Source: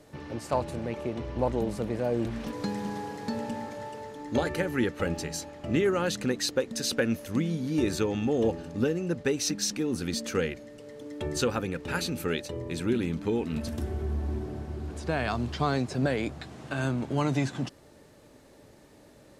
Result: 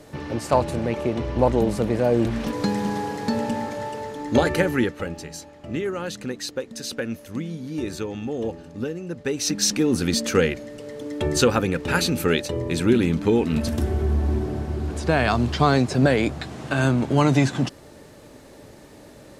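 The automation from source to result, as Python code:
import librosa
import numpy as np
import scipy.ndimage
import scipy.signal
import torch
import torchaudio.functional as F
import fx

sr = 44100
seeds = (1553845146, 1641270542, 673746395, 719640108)

y = fx.gain(x, sr, db=fx.line((4.68, 8.5), (5.11, -2.0), (9.13, -2.0), (9.68, 9.0)))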